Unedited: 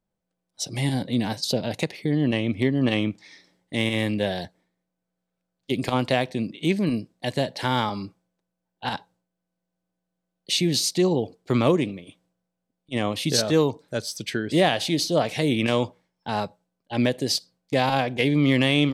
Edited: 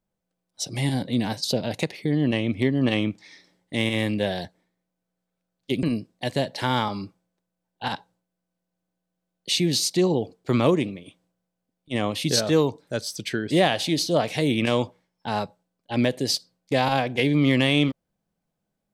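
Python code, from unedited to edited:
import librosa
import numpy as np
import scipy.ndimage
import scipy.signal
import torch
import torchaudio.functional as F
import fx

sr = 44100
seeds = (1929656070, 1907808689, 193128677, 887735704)

y = fx.edit(x, sr, fx.cut(start_s=5.83, length_s=1.01), tone=tone)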